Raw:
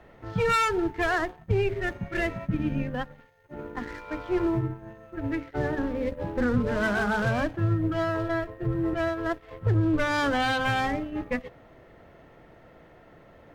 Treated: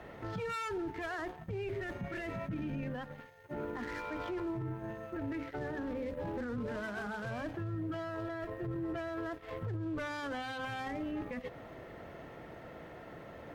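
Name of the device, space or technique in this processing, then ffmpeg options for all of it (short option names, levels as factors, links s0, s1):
podcast mastering chain: -af "highpass=f=72:p=1,acompressor=threshold=0.02:ratio=3,alimiter=level_in=3.76:limit=0.0631:level=0:latency=1:release=10,volume=0.266,volume=1.68" -ar 48000 -c:a libmp3lame -b:a 96k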